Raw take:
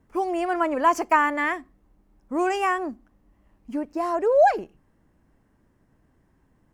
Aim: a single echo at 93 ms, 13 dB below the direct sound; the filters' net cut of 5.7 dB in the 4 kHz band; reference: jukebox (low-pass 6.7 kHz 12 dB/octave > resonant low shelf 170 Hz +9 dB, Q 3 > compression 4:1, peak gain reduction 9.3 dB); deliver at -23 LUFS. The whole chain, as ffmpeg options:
-af "lowpass=6700,lowshelf=f=170:t=q:w=3:g=9,equalizer=f=4000:t=o:g=-9,aecho=1:1:93:0.224,acompressor=threshold=0.0631:ratio=4,volume=2"

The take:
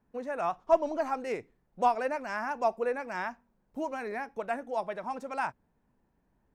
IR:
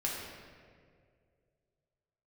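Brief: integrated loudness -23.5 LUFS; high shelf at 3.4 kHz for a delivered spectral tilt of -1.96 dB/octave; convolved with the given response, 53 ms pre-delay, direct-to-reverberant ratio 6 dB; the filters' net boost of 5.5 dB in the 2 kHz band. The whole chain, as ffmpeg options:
-filter_complex "[0:a]equalizer=f=2000:t=o:g=6.5,highshelf=f=3400:g=3,asplit=2[s0][s1];[1:a]atrim=start_sample=2205,adelay=53[s2];[s1][s2]afir=irnorm=-1:irlink=0,volume=0.299[s3];[s0][s3]amix=inputs=2:normalize=0,volume=2.11"

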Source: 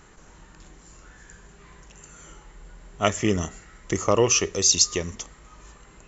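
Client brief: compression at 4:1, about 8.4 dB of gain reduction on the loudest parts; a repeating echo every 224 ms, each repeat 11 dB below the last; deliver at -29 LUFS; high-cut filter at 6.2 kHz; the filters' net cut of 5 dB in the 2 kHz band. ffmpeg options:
-af "lowpass=6200,equalizer=f=2000:t=o:g=-6.5,acompressor=threshold=0.0562:ratio=4,aecho=1:1:224|448|672:0.282|0.0789|0.0221,volume=1.12"

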